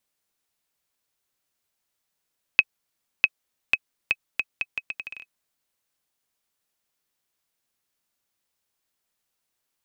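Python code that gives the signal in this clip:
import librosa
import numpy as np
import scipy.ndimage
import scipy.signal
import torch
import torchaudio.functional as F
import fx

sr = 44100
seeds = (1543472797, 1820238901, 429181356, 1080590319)

y = fx.bouncing_ball(sr, first_gap_s=0.65, ratio=0.76, hz=2550.0, decay_ms=44.0, level_db=-2.0)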